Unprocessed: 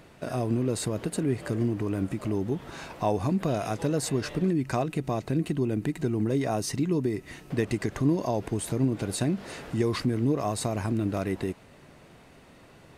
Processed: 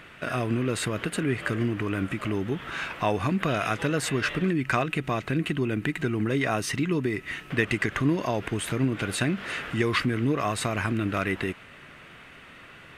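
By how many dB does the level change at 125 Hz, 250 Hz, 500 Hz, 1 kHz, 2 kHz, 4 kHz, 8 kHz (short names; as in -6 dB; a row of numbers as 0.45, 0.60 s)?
0.0, 0.0, 0.0, +3.5, +12.0, +6.0, 0.0 dB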